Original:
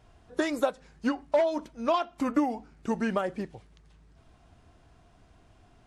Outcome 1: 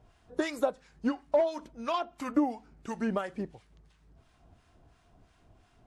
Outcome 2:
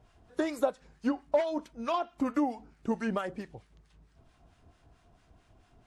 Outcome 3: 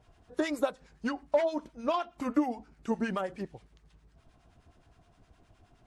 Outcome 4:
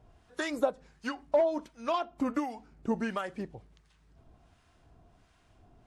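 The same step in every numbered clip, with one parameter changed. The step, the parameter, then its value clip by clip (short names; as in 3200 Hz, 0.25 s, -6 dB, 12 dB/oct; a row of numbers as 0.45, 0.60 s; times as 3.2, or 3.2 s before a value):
harmonic tremolo, rate: 2.9, 4.5, 9.6, 1.4 Hz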